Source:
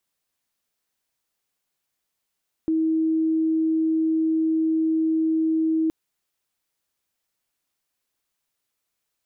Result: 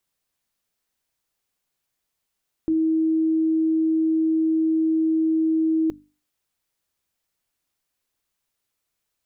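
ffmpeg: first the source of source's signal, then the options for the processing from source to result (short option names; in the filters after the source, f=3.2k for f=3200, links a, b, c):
-f lavfi -i "sine=f=320:d=3.22:r=44100,volume=-0.44dB"
-af "lowshelf=f=150:g=6.5,bandreject=f=50:t=h:w=6,bandreject=f=100:t=h:w=6,bandreject=f=150:t=h:w=6,bandreject=f=200:t=h:w=6,bandreject=f=250:t=h:w=6,bandreject=f=300:t=h:w=6"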